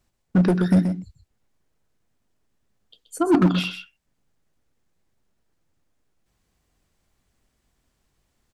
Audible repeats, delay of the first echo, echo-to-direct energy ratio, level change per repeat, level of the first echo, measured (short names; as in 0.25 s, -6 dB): 1, 0.128 s, -8.5 dB, no steady repeat, -8.5 dB